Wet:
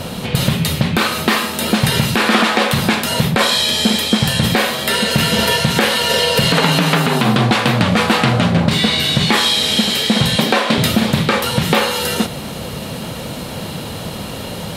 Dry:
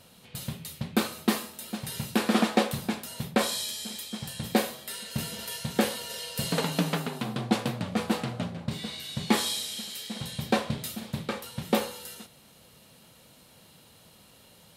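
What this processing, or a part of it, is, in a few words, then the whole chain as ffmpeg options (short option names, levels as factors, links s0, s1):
mastering chain: -filter_complex "[0:a]asettb=1/sr,asplit=3[s0][s1][s2];[s0]atrim=end=10.364[s3];[s1]atrim=start=10.36:end=10.78,asetpts=PTS-STARTPTS,afade=t=in:d=0.004:c=qsin,afade=t=out:st=0.416:d=0.004:c=qsin,highpass=f=230:w=0.5412,highpass=f=230:w=1.3066[s4];[s2]atrim=start=10.776[s5];[s3][s4]acrossfade=d=0.004:c1=hsin:c2=qsin[s6];[s6][s5]acrossfade=d=0.004:c1=qsin:c2=hsin,equalizer=f=3300:t=o:w=2.6:g=4,acrossover=split=1100|4000[s7][s8][s9];[s7]acompressor=threshold=0.00891:ratio=4[s10];[s8]acompressor=threshold=0.0251:ratio=4[s11];[s9]acompressor=threshold=0.00708:ratio=4[s12];[s10][s11][s12]amix=inputs=3:normalize=0,acompressor=threshold=0.01:ratio=1.5,tiltshelf=f=1400:g=6,alimiter=level_in=23.7:limit=0.891:release=50:level=0:latency=1,volume=0.891"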